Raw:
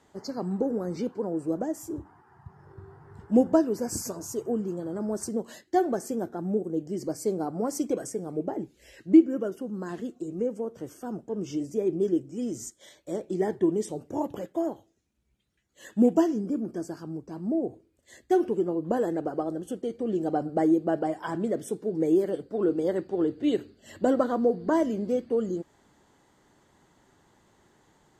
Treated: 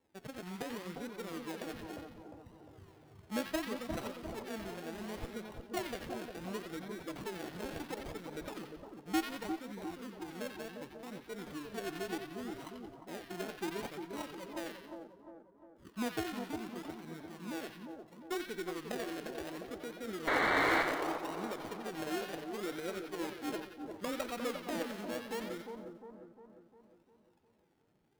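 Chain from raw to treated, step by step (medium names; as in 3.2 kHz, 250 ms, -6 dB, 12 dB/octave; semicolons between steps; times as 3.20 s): level-controlled noise filter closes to 2.3 kHz, open at -24.5 dBFS; pre-emphasis filter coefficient 0.9; in parallel at +1.5 dB: compression, threshold -51 dBFS, peak gain reduction 19 dB; on the sum: loudest bins only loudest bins 16; decimation with a swept rate 32×, swing 60% 0.69 Hz; painted sound noise, 20.27–20.83 s, 260–2300 Hz -31 dBFS; on a send: two-band feedback delay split 1.2 kHz, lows 353 ms, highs 89 ms, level -5.5 dB; on the sum: sliding maximum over 5 samples; trim +1 dB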